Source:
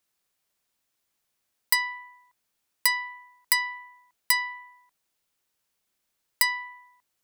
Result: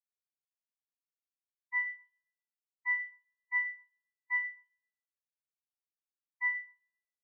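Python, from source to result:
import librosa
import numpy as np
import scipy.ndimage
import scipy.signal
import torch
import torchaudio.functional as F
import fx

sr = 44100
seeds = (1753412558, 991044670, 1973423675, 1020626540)

y = fx.cvsd(x, sr, bps=16000)
y = scipy.signal.sosfilt(scipy.signal.butter(2, 1200.0, 'highpass', fs=sr, output='sos'), y)
y = fx.echo_feedback(y, sr, ms=131, feedback_pct=58, wet_db=-12)
y = fx.spectral_expand(y, sr, expansion=2.5)
y = F.gain(torch.from_numpy(y), -1.0).numpy()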